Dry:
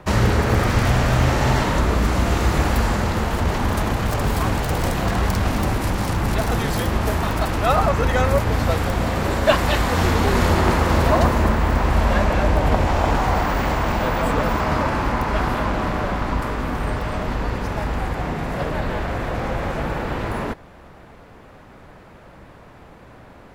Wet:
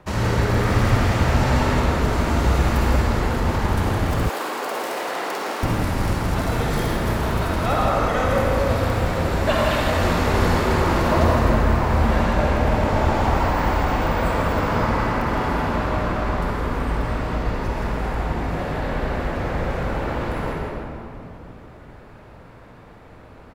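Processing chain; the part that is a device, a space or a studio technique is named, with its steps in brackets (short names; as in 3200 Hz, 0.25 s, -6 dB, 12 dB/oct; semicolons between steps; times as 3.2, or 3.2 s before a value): cave (echo 0.163 s -8.5 dB; reverb RT60 2.8 s, pre-delay 47 ms, DRR -3 dB); 4.29–5.63 HPF 340 Hz 24 dB/oct; gain -6.5 dB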